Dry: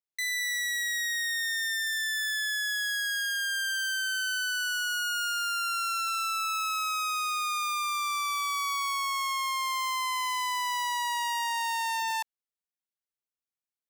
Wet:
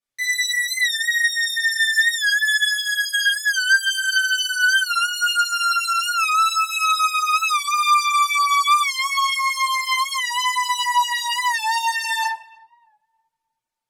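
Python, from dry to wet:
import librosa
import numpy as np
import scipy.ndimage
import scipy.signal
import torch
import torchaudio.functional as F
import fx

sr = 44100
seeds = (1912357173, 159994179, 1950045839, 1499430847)

y = scipy.signal.sosfilt(scipy.signal.butter(2, 12000.0, 'lowpass', fs=sr, output='sos'), x)
y = fx.room_shoebox(y, sr, seeds[0], volume_m3=410.0, walls='mixed', distance_m=6.0)
y = fx.dereverb_blind(y, sr, rt60_s=0.59)
y = fx.highpass(y, sr, hz=670.0, slope=24, at=(0.65, 3.26))
y = fx.echo_filtered(y, sr, ms=311, feedback_pct=44, hz=890.0, wet_db=-21.5)
y = fx.record_warp(y, sr, rpm=45.0, depth_cents=100.0)
y = F.gain(torch.from_numpy(y), -1.5).numpy()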